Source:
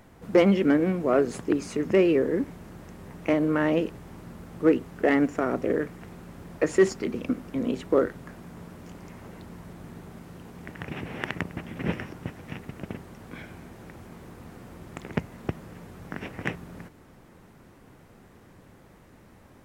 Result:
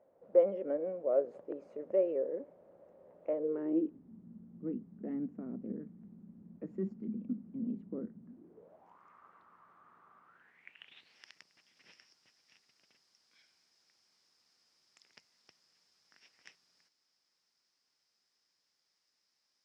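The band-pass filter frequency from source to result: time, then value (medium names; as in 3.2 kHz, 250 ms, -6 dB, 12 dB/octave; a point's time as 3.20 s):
band-pass filter, Q 8.3
3.29 s 560 Hz
4.16 s 210 Hz
8.26 s 210 Hz
9.01 s 1.2 kHz
10.24 s 1.2 kHz
11.17 s 5.1 kHz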